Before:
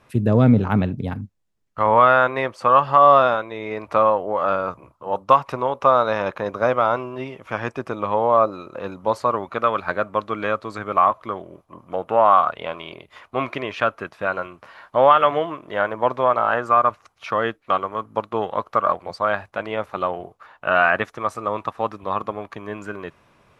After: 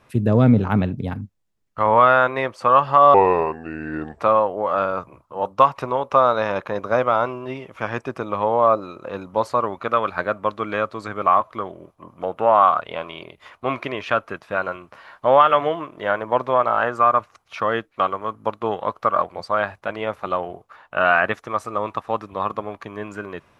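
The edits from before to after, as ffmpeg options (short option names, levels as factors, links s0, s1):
-filter_complex "[0:a]asplit=3[s0][s1][s2];[s0]atrim=end=3.144[s3];[s1]atrim=start=3.14:end=3.9,asetpts=PTS-STARTPTS,asetrate=31752,aresample=44100[s4];[s2]atrim=start=3.896[s5];[s3][s4]acrossfade=d=0.004:c1=hsin:c2=hsin[s6];[s6][s5]acrossfade=d=0.004:c1=hsin:c2=hsin"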